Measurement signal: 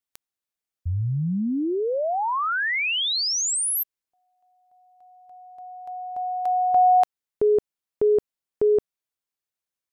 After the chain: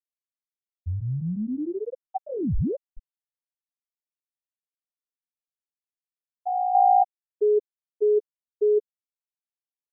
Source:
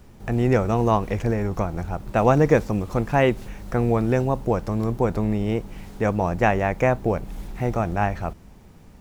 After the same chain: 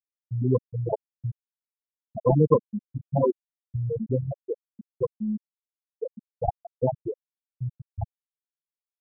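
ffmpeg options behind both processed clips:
-filter_complex "[0:a]asplit=2[a][b];[b]adelay=150,highpass=300,lowpass=3.4k,asoftclip=type=hard:threshold=-13.5dB,volume=-16dB[c];[a][c]amix=inputs=2:normalize=0,adynamicequalizer=threshold=0.0178:dfrequency=1600:dqfactor=1.7:tfrequency=1600:tqfactor=1.7:attack=5:release=100:ratio=0.375:range=1.5:mode=boostabove:tftype=bell,acrossover=split=250|540|2800[d][e][f][g];[g]asoftclip=type=tanh:threshold=-34.5dB[h];[d][e][f][h]amix=inputs=4:normalize=0,acrusher=samples=29:mix=1:aa=0.000001,afftfilt=real='re*gte(hypot(re,im),0.708)':imag='im*gte(hypot(re,im),0.708)':win_size=1024:overlap=0.75"

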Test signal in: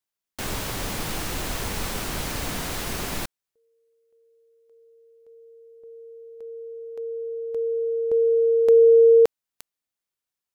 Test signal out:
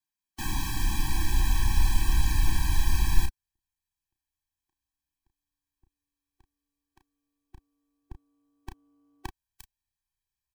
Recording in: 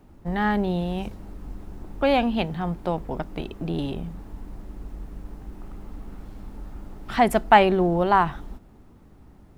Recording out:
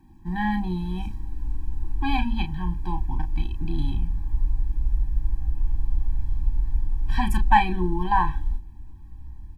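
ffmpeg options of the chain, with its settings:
-filter_complex "[0:a]asplit=2[a][b];[b]adelay=33,volume=-7.5dB[c];[a][c]amix=inputs=2:normalize=0,asubboost=boost=10.5:cutoff=73,afftfilt=real='re*eq(mod(floor(b*sr/1024/380),2),0)':imag='im*eq(mod(floor(b*sr/1024/380),2),0)':win_size=1024:overlap=0.75,volume=-1.5dB"

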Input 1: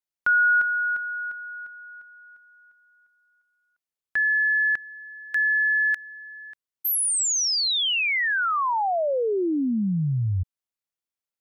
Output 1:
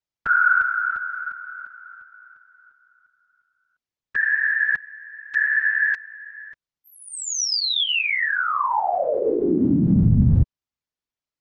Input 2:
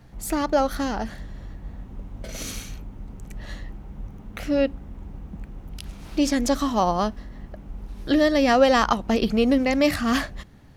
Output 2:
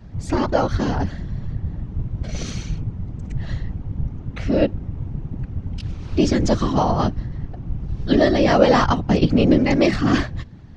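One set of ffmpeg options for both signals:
-af "lowpass=f=6.4k:w=0.5412,lowpass=f=6.4k:w=1.3066,lowshelf=f=180:g=11,afftfilt=real='hypot(re,im)*cos(2*PI*random(0))':imag='hypot(re,im)*sin(2*PI*random(1))':win_size=512:overlap=0.75,volume=7dB"

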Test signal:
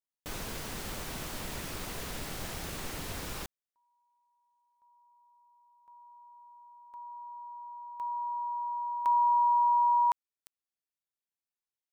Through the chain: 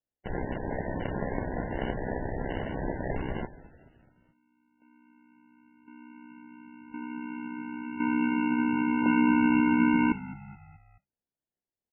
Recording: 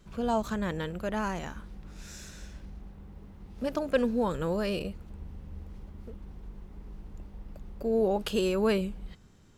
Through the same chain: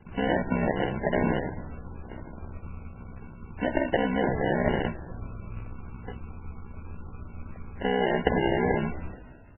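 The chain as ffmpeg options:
-filter_complex "[0:a]aeval=exprs='val(0)*sin(2*PI*32*n/s)':c=same,highshelf=f=4.4k:g=-3.5,acompressor=threshold=-39dB:ratio=4:attack=36:release=27:knee=1:detection=peak,crystalizer=i=8.5:c=0,adynamicsmooth=sensitivity=4.5:basefreq=1.2k,aresample=16000,acrusher=samples=13:mix=1:aa=0.000001,aresample=44100,bandreject=f=60:t=h:w=6,bandreject=f=120:t=h:w=6,asplit=2[a][b];[b]asplit=4[c][d][e][f];[c]adelay=214,afreqshift=-50,volume=-17.5dB[g];[d]adelay=428,afreqshift=-100,volume=-23.3dB[h];[e]adelay=642,afreqshift=-150,volume=-29.2dB[i];[f]adelay=856,afreqshift=-200,volume=-35dB[j];[g][h][i][j]amix=inputs=4:normalize=0[k];[a][k]amix=inputs=2:normalize=0,volume=8.5dB" -ar 12000 -c:a libmp3lame -b:a 8k

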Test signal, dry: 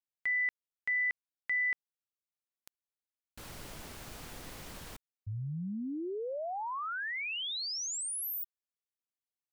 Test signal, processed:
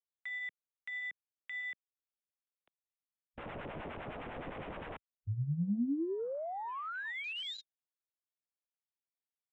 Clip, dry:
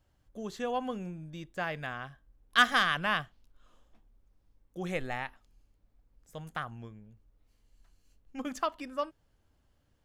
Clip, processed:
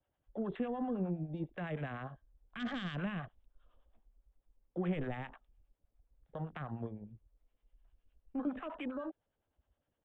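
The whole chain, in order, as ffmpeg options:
-filter_complex "[0:a]lowshelf=f=89:g=-9.5,acrossover=split=270|1900[a][b][c];[b]acompressor=threshold=-40dB:ratio=6:attack=4.1:release=37:knee=2.83:detection=peak[d];[a][d][c]amix=inputs=3:normalize=0,equalizer=f=610:t=o:w=1.3:g=6,acrossover=split=660[e][f];[e]aeval=exprs='val(0)*(1-0.7/2+0.7/2*cos(2*PI*9.8*n/s))':c=same[g];[f]aeval=exprs='val(0)*(1-0.7/2-0.7/2*cos(2*PI*9.8*n/s))':c=same[h];[g][h]amix=inputs=2:normalize=0,aresample=8000,aresample=44100,acrossover=split=290[i][j];[j]acompressor=threshold=-47dB:ratio=8:attack=0.3:release=64:knee=1:detection=peak[k];[i][k]amix=inputs=2:normalize=0,afwtdn=0.00141,volume=8.5dB"

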